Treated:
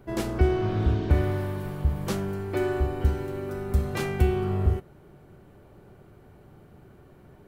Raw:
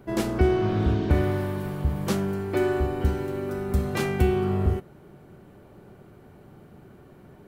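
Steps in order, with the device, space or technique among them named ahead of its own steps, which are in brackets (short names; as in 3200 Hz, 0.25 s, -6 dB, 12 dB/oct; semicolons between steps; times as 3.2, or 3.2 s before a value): low shelf boost with a cut just above (low shelf 90 Hz +6.5 dB; bell 210 Hz -3.5 dB 0.92 oct); gain -2.5 dB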